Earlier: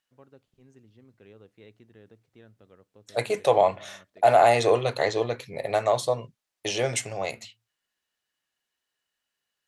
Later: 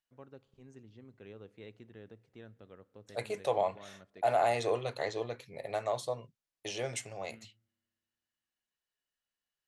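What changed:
second voice -10.5 dB; reverb: on, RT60 2.4 s

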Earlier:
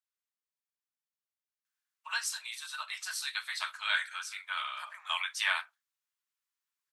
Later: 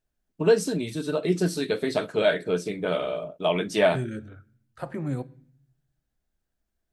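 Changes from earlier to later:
first voice: entry -1.65 s; master: remove steep high-pass 1000 Hz 48 dB/oct

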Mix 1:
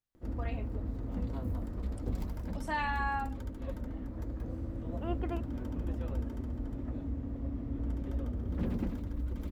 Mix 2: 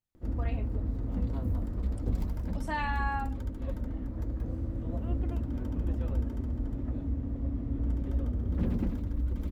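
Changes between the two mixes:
second voice -8.5 dB; master: add low shelf 240 Hz +5.5 dB

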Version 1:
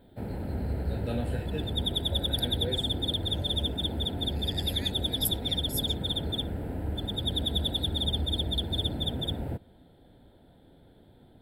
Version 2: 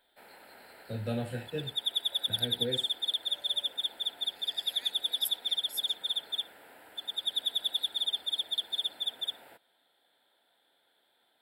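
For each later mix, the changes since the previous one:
second voice -5.5 dB; background: add HPF 1300 Hz 12 dB/oct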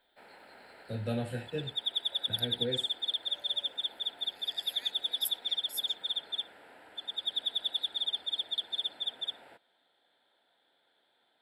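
background: add air absorption 64 m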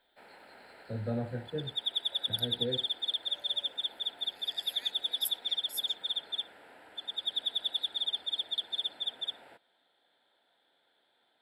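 first voice: add running mean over 15 samples

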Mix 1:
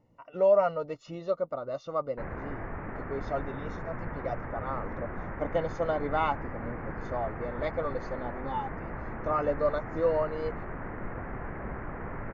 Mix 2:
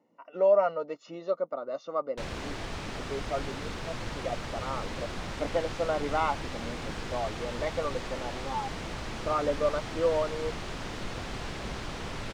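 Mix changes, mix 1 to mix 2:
speech: add HPF 210 Hz 24 dB/oct; background: remove steep low-pass 2000 Hz 48 dB/oct

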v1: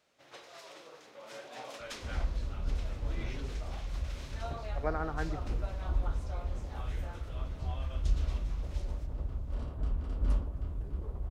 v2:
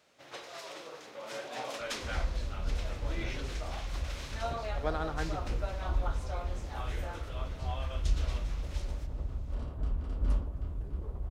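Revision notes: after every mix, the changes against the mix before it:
speech: remove brick-wall FIR low-pass 2400 Hz; first sound +6.0 dB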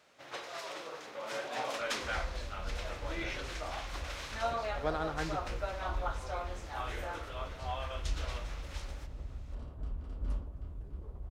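first sound: add bell 1300 Hz +4 dB 2.1 oct; second sound -6.5 dB

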